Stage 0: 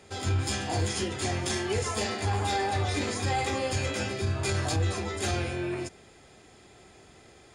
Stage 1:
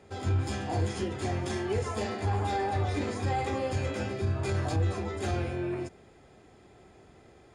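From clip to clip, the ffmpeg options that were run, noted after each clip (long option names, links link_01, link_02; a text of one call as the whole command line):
ffmpeg -i in.wav -af "highshelf=frequency=2100:gain=-12" out.wav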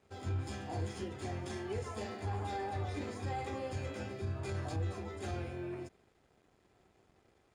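ffmpeg -i in.wav -af "aeval=exprs='sgn(val(0))*max(abs(val(0))-0.00106,0)':channel_layout=same,volume=-8.5dB" out.wav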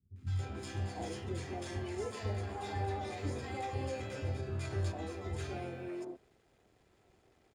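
ffmpeg -i in.wav -filter_complex "[0:a]acrossover=split=200|1100[link_01][link_02][link_03];[link_03]adelay=160[link_04];[link_02]adelay=280[link_05];[link_01][link_05][link_04]amix=inputs=3:normalize=0,volume=1.5dB" out.wav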